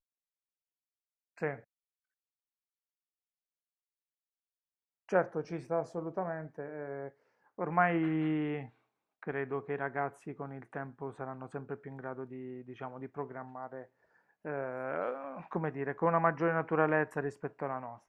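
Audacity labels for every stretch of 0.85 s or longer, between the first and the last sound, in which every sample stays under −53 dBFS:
1.630000	5.090000	silence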